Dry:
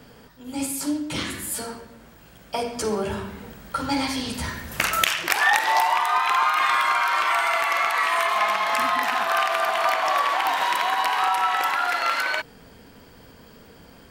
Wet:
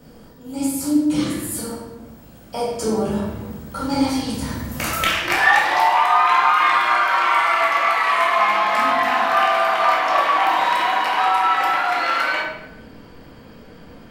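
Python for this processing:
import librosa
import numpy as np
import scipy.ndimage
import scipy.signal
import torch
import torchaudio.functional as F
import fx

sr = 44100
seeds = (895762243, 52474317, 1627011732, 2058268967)

y = fx.peak_eq(x, sr, hz=fx.steps((0.0, 2300.0), (5.0, 13000.0)), db=-8.5, octaves=2.2)
y = fx.room_shoebox(y, sr, seeds[0], volume_m3=310.0, walls='mixed', distance_m=2.0)
y = F.gain(torch.from_numpy(y), -1.0).numpy()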